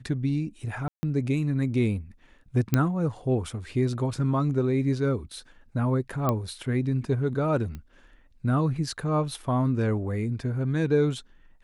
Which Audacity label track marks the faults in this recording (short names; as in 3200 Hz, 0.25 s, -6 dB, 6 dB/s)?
0.880000	1.030000	gap 0.15 s
2.740000	2.740000	pop -8 dBFS
6.290000	6.290000	pop -12 dBFS
7.750000	7.750000	pop -25 dBFS